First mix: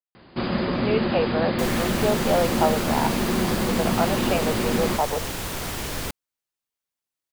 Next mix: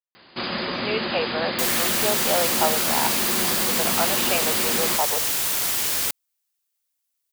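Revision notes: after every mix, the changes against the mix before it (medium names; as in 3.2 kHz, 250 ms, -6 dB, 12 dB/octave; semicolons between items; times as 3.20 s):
master: add tilt EQ +3.5 dB/octave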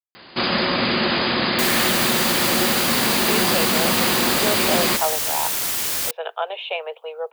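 speech: entry +2.40 s; first sound +7.0 dB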